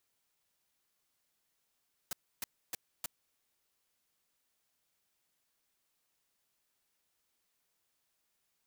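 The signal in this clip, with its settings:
noise bursts white, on 0.02 s, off 0.29 s, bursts 4, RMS −37.5 dBFS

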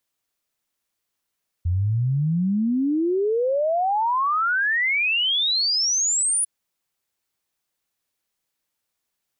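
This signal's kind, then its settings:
exponential sine sweep 84 Hz → 10,000 Hz 4.80 s −18.5 dBFS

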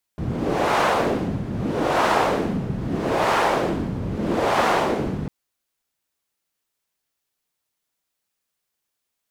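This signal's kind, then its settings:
wind from filtered noise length 5.10 s, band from 150 Hz, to 910 Hz, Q 1.3, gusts 4, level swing 8 dB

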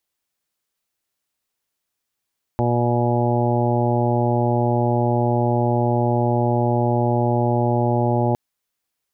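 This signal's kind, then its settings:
steady harmonic partials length 5.76 s, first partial 120 Hz, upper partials −4/−4/−8.5/−5/−9/−4.5/−19.5 dB, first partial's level −20 dB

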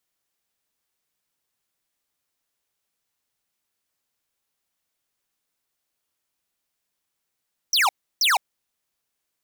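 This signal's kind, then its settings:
repeated falling chirps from 6,200 Hz, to 710 Hz, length 0.16 s square, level −18.5 dB, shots 2, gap 0.32 s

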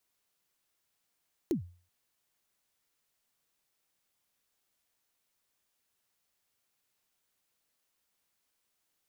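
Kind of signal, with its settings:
synth kick length 0.38 s, from 390 Hz, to 88 Hz, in 111 ms, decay 0.40 s, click on, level −23 dB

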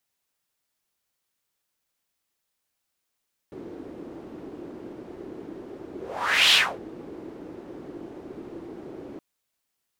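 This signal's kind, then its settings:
pass-by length 5.67 s, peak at 0:03.01, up 0.60 s, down 0.28 s, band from 340 Hz, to 3,300 Hz, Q 3.4, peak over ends 23 dB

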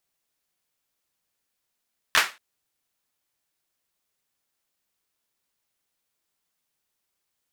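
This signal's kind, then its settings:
synth clap length 0.23 s, bursts 3, apart 12 ms, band 1,700 Hz, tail 0.27 s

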